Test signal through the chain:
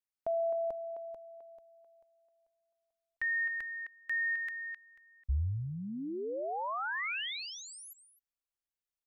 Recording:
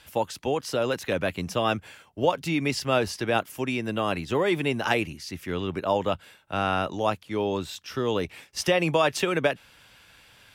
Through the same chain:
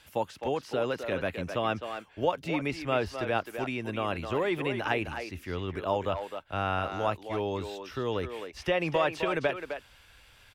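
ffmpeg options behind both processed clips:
ffmpeg -i in.wav -filter_complex "[0:a]asubboost=boost=5.5:cutoff=67,asplit=2[link_01][link_02];[link_02]adelay=260,highpass=300,lowpass=3400,asoftclip=type=hard:threshold=-17dB,volume=-7dB[link_03];[link_01][link_03]amix=inputs=2:normalize=0,acrossover=split=3400[link_04][link_05];[link_05]acompressor=threshold=-47dB:ratio=4:attack=1:release=60[link_06];[link_04][link_06]amix=inputs=2:normalize=0,volume=-4dB" out.wav

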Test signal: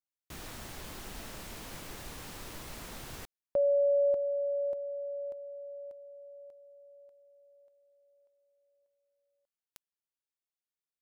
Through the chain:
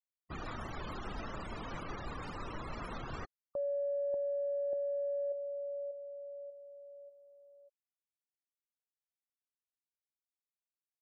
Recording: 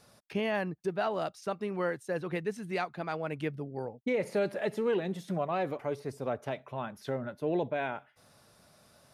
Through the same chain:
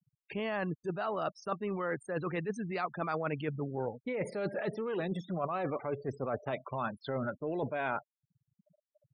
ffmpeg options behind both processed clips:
ffmpeg -i in.wav -af "afftfilt=real='re*gte(hypot(re,im),0.00631)':imag='im*gte(hypot(re,im),0.00631)':win_size=1024:overlap=0.75,equalizer=frequency=1200:width_type=o:width=0.44:gain=7.5,areverse,acompressor=threshold=-39dB:ratio=16:attack=35:release=52:knee=1:detection=peak,areverse,volume=3.5dB" out.wav

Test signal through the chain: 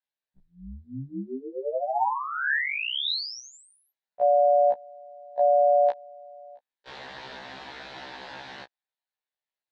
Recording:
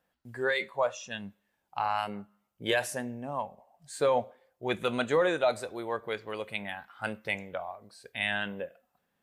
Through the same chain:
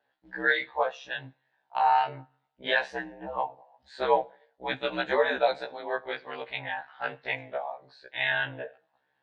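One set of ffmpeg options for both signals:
ffmpeg -i in.wav -af "highpass=240,equalizer=frequency=390:width_type=q:width=4:gain=-7,equalizer=frequency=560:width_type=q:width=4:gain=4,equalizer=frequency=850:width_type=q:width=4:gain=9,equalizer=frequency=1200:width_type=q:width=4:gain=-4,equalizer=frequency=1700:width_type=q:width=4:gain=8,equalizer=frequency=3900:width_type=q:width=4:gain=6,lowpass=frequency=4400:width=0.5412,lowpass=frequency=4400:width=1.3066,aeval=exprs='val(0)*sin(2*PI*70*n/s)':channel_layout=same,afftfilt=real='re*1.73*eq(mod(b,3),0)':imag='im*1.73*eq(mod(b,3),0)':win_size=2048:overlap=0.75,volume=4.5dB" out.wav

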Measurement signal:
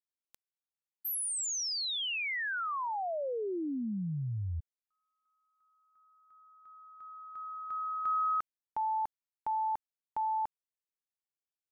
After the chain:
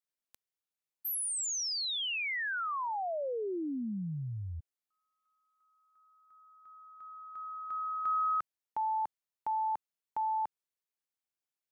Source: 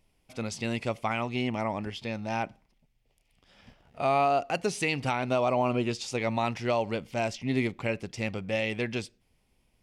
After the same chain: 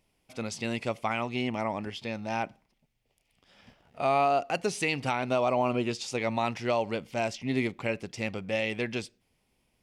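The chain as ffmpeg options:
ffmpeg -i in.wav -af "lowshelf=frequency=77:gain=-10" out.wav

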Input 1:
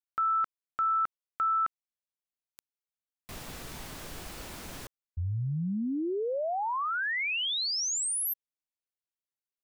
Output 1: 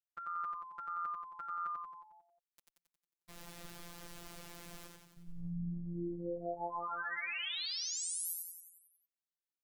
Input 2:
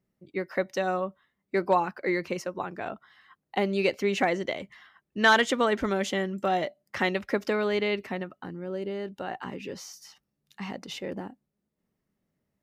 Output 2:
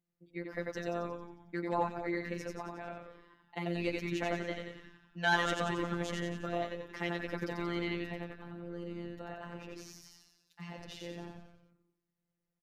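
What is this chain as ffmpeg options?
ffmpeg -i in.wav -filter_complex "[0:a]asplit=9[link_01][link_02][link_03][link_04][link_05][link_06][link_07][link_08][link_09];[link_02]adelay=90,afreqshift=-75,volume=-3dB[link_10];[link_03]adelay=180,afreqshift=-150,volume=-7.9dB[link_11];[link_04]adelay=270,afreqshift=-225,volume=-12.8dB[link_12];[link_05]adelay=360,afreqshift=-300,volume=-17.6dB[link_13];[link_06]adelay=450,afreqshift=-375,volume=-22.5dB[link_14];[link_07]adelay=540,afreqshift=-450,volume=-27.4dB[link_15];[link_08]adelay=630,afreqshift=-525,volume=-32.3dB[link_16];[link_09]adelay=720,afreqshift=-600,volume=-37.2dB[link_17];[link_01][link_10][link_11][link_12][link_13][link_14][link_15][link_16][link_17]amix=inputs=9:normalize=0,afftfilt=real='hypot(re,im)*cos(PI*b)':imag='0':win_size=1024:overlap=0.75,volume=-7.5dB" out.wav

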